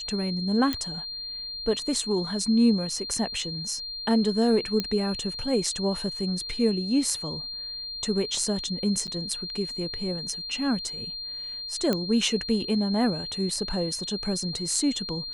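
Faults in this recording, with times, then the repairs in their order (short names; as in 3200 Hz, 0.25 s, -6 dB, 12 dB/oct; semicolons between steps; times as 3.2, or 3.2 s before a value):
tone 4200 Hz -33 dBFS
0.73 pop -13 dBFS
4.8 pop -13 dBFS
9.07–9.08 gap 8 ms
11.93 pop -12 dBFS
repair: de-click; notch 4200 Hz, Q 30; interpolate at 9.07, 8 ms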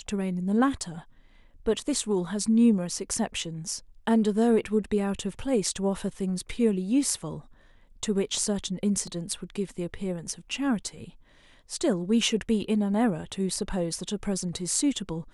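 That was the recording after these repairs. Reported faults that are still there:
none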